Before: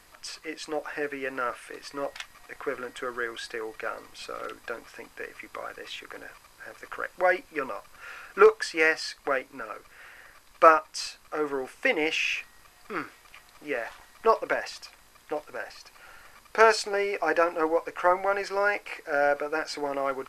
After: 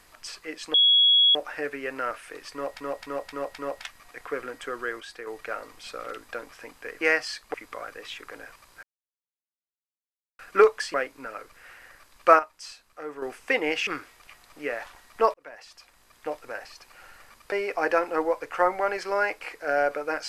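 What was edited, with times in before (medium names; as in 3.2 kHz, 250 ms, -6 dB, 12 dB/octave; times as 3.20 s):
0.74 s: add tone 3.34 kHz -15 dBFS 0.61 s
1.93–2.19 s: loop, 5 plays
3.35–3.62 s: gain -5 dB
6.65–8.21 s: mute
8.76–9.29 s: move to 5.36 s
10.74–11.57 s: gain -8 dB
12.22–12.92 s: delete
14.39–15.36 s: fade in
16.57–16.97 s: delete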